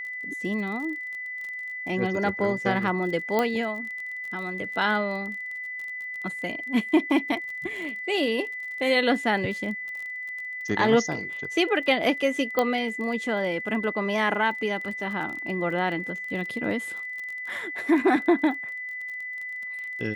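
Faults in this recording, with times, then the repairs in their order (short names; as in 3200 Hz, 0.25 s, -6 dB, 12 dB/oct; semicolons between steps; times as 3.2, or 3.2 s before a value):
crackle 27/s -34 dBFS
tone 2000 Hz -32 dBFS
3.39 pop -11 dBFS
12.59 pop -10 dBFS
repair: de-click; notch 2000 Hz, Q 30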